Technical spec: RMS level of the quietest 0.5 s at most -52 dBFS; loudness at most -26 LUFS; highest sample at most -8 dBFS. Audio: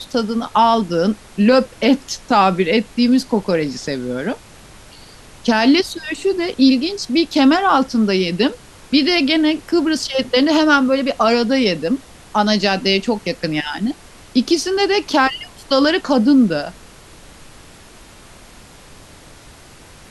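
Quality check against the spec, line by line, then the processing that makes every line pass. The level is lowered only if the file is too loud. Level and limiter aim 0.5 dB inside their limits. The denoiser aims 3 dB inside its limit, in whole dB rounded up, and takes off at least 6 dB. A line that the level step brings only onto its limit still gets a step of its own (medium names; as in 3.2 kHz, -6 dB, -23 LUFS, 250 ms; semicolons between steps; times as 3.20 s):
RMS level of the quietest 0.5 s -42 dBFS: fail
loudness -16.5 LUFS: fail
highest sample -2.5 dBFS: fail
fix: noise reduction 6 dB, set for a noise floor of -42 dBFS; trim -10 dB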